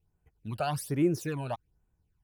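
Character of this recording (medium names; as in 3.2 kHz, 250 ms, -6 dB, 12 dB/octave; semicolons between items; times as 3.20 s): phasing stages 12, 1.2 Hz, lowest notch 340–4900 Hz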